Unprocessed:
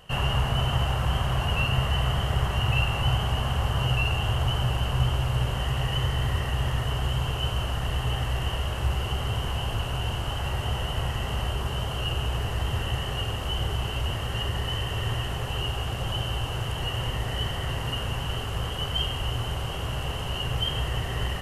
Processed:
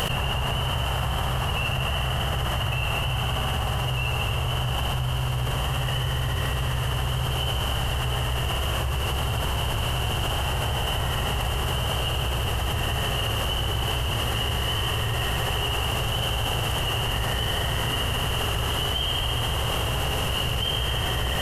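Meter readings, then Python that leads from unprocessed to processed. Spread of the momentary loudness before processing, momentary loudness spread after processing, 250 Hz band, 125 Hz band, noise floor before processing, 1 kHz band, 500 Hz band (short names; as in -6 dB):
5 LU, 1 LU, +1.5 dB, +0.5 dB, -32 dBFS, +3.5 dB, +3.5 dB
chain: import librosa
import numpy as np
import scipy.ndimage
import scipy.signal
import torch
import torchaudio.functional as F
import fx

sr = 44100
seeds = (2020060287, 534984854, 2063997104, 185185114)

y = fx.high_shelf(x, sr, hz=12000.0, db=11.0)
y = fx.vibrato(y, sr, rate_hz=13.0, depth_cents=8.1)
y = fx.echo_thinned(y, sr, ms=73, feedback_pct=83, hz=230.0, wet_db=-5.0)
y = fx.env_flatten(y, sr, amount_pct=100)
y = y * librosa.db_to_amplitude(-7.0)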